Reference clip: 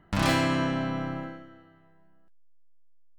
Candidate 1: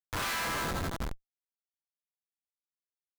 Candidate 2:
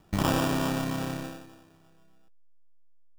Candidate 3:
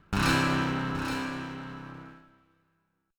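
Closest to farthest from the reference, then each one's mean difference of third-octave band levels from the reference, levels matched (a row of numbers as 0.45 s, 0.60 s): 2, 3, 1; 5.5 dB, 7.5 dB, 11.5 dB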